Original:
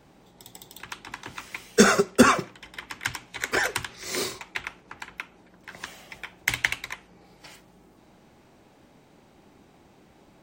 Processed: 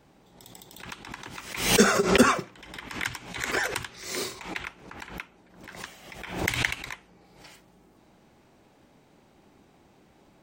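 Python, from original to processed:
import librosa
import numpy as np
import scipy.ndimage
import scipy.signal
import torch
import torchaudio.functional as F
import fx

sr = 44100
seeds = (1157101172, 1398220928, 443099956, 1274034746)

y = fx.pre_swell(x, sr, db_per_s=81.0)
y = F.gain(torch.from_numpy(y), -3.0).numpy()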